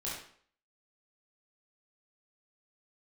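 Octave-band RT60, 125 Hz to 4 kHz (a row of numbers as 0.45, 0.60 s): 0.50, 0.50, 0.55, 0.55, 0.50, 0.45 s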